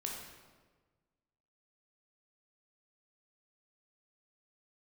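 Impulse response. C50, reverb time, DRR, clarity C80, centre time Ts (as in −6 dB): 2.0 dB, 1.4 s, −1.5 dB, 4.0 dB, 61 ms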